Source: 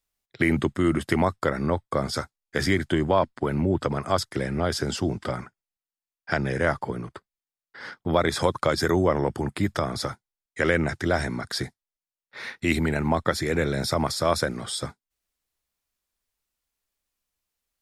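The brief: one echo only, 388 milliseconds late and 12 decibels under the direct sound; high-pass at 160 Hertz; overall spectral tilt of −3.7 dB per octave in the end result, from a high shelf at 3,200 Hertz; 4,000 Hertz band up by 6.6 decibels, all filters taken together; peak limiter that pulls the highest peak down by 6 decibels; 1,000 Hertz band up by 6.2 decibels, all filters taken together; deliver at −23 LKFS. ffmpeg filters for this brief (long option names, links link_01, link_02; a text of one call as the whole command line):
ffmpeg -i in.wav -af "highpass=160,equalizer=frequency=1000:width_type=o:gain=7,highshelf=frequency=3200:gain=4.5,equalizer=frequency=4000:width_type=o:gain=4.5,alimiter=limit=-9dB:level=0:latency=1,aecho=1:1:388:0.251,volume=1.5dB" out.wav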